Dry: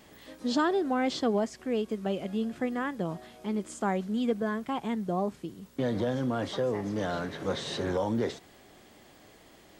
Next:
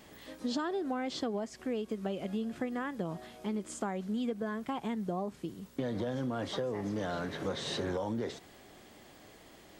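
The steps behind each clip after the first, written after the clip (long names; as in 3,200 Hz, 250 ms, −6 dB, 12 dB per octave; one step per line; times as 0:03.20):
downward compressor, threshold −31 dBFS, peak gain reduction 9.5 dB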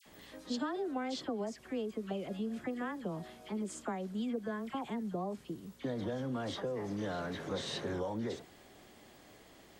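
all-pass dispersion lows, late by 62 ms, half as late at 1,400 Hz
level −2.5 dB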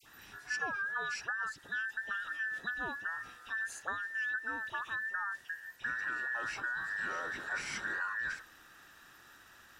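frequency inversion band by band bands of 2,000 Hz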